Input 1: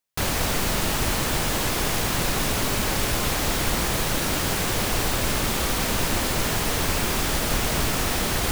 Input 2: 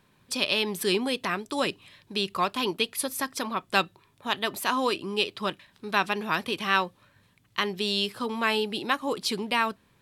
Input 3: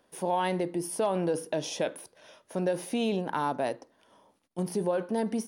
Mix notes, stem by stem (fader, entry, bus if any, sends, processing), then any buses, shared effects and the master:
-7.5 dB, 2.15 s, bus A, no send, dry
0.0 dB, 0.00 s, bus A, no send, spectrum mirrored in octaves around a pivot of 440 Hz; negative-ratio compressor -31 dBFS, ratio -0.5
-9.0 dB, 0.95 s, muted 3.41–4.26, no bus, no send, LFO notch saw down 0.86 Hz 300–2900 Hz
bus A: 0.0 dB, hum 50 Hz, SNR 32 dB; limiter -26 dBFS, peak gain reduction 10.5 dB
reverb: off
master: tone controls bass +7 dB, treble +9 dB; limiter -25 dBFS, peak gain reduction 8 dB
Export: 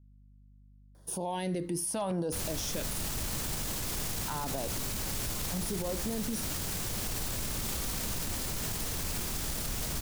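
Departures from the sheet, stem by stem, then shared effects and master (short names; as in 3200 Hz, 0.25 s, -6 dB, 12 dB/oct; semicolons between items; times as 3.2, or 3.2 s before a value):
stem 2: muted; stem 3 -9.0 dB -> +0.5 dB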